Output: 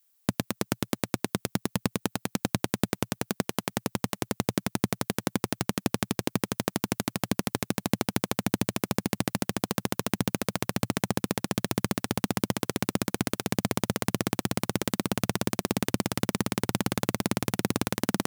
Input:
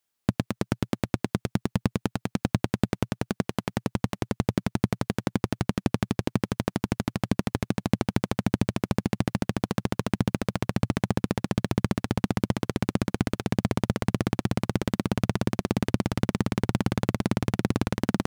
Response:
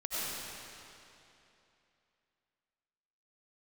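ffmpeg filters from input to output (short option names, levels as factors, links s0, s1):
-af "highpass=f=210:p=1,aemphasis=mode=production:type=50kf"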